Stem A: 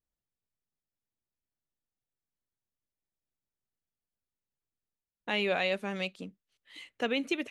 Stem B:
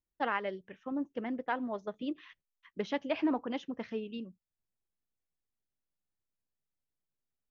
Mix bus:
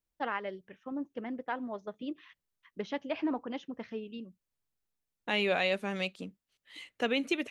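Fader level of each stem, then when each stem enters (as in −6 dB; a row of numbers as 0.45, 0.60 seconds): +0.5, −2.0 decibels; 0.00, 0.00 seconds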